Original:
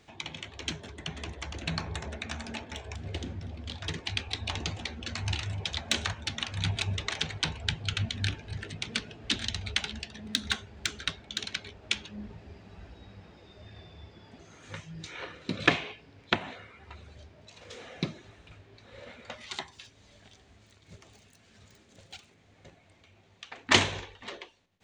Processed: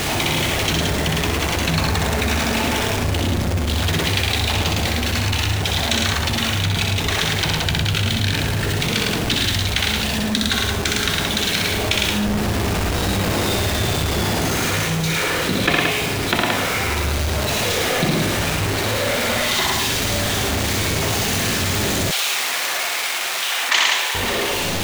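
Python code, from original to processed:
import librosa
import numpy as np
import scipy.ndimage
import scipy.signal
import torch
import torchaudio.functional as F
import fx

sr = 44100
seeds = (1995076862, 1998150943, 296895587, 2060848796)

y = x + 0.5 * 10.0 ** (-28.5 / 20.0) * np.sign(x)
y = fx.echo_multitap(y, sr, ms=(62, 107, 174), db=(-3.5, -3.5, -6.0))
y = fx.rider(y, sr, range_db=10, speed_s=2.0)
y = fx.highpass(y, sr, hz=960.0, slope=12, at=(22.11, 24.15))
y = fx.env_flatten(y, sr, amount_pct=50)
y = y * 10.0 ** (2.5 / 20.0)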